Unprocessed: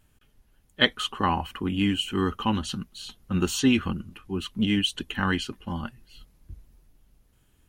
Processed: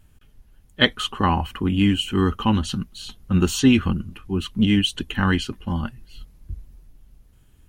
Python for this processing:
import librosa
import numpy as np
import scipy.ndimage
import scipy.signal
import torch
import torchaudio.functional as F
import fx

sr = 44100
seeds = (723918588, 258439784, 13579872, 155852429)

y = fx.low_shelf(x, sr, hz=170.0, db=8.0)
y = y * librosa.db_to_amplitude(3.0)